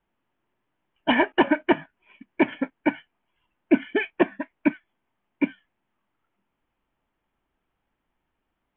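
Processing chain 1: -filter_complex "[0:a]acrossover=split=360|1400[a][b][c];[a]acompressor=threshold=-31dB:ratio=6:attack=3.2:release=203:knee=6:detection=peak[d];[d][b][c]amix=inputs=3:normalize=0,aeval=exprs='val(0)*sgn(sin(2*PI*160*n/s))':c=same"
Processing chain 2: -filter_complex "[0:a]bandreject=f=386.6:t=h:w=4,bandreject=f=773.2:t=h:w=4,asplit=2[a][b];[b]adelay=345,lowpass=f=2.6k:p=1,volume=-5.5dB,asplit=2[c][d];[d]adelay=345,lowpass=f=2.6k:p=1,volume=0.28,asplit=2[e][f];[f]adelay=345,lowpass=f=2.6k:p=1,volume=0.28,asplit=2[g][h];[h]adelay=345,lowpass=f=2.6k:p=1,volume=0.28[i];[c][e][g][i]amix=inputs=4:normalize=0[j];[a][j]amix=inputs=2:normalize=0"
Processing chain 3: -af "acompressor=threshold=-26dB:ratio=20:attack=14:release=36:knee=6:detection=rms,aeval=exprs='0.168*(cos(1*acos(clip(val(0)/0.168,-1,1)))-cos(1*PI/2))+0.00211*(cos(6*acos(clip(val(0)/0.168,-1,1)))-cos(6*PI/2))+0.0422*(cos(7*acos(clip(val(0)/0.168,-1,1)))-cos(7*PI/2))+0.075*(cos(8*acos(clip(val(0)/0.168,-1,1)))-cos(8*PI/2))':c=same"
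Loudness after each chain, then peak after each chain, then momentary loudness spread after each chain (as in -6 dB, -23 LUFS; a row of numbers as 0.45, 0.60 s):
-27.0, -25.0, -29.5 LUFS; -7.0, -6.0, -11.5 dBFS; 10, 12, 8 LU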